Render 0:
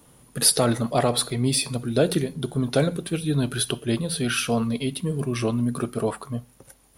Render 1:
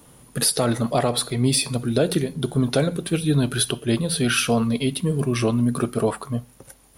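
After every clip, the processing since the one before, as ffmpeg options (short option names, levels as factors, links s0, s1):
-af "alimiter=limit=0.224:level=0:latency=1:release=303,volume=1.58"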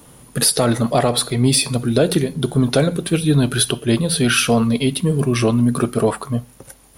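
-af "acontrast=24"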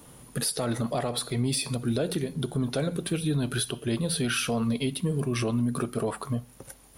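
-af "alimiter=limit=0.211:level=0:latency=1:release=232,volume=0.562"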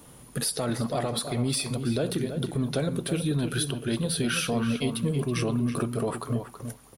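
-filter_complex "[0:a]asplit=2[s0][s1];[s1]adelay=326,lowpass=f=3000:p=1,volume=0.398,asplit=2[s2][s3];[s3]adelay=326,lowpass=f=3000:p=1,volume=0.15[s4];[s0][s2][s4]amix=inputs=3:normalize=0"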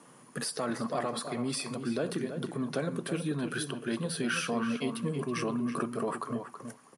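-af "highpass=f=160:w=0.5412,highpass=f=160:w=1.3066,equalizer=f=1100:t=q:w=4:g=7,equalizer=f=1700:t=q:w=4:g=5,equalizer=f=3700:t=q:w=4:g=-7,lowpass=f=9400:w=0.5412,lowpass=f=9400:w=1.3066,volume=0.631"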